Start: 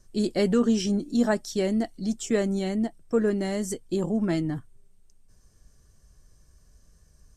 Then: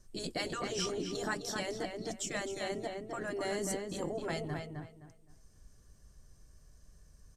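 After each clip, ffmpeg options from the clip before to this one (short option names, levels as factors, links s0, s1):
-filter_complex "[0:a]afftfilt=real='re*lt(hypot(re,im),0.282)':imag='im*lt(hypot(re,im),0.282)':win_size=1024:overlap=0.75,asplit=2[s0][s1];[s1]adelay=259,lowpass=f=2800:p=1,volume=0.631,asplit=2[s2][s3];[s3]adelay=259,lowpass=f=2800:p=1,volume=0.27,asplit=2[s4][s5];[s5]adelay=259,lowpass=f=2800:p=1,volume=0.27,asplit=2[s6][s7];[s7]adelay=259,lowpass=f=2800:p=1,volume=0.27[s8];[s2][s4][s6][s8]amix=inputs=4:normalize=0[s9];[s0][s9]amix=inputs=2:normalize=0,volume=0.708"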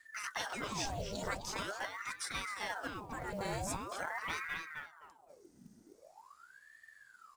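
-af "acrusher=bits=6:mode=log:mix=0:aa=0.000001,aeval=exprs='val(0)*sin(2*PI*1000*n/s+1000*0.8/0.44*sin(2*PI*0.44*n/s))':c=same"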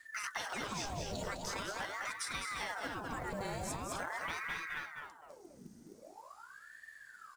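-af "aecho=1:1:206:0.473,acompressor=threshold=0.01:ratio=6,volume=1.58"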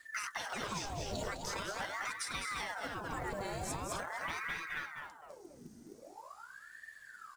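-af "alimiter=level_in=1.58:limit=0.0631:level=0:latency=1:release=409,volume=0.631,flanger=delay=0.2:depth=2.8:regen=-69:speed=0.43:shape=triangular,volume=2"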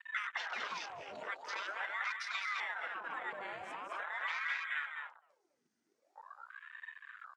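-af "bandpass=f=2100:t=q:w=0.85:csg=0,afwtdn=0.00316,volume=1.5"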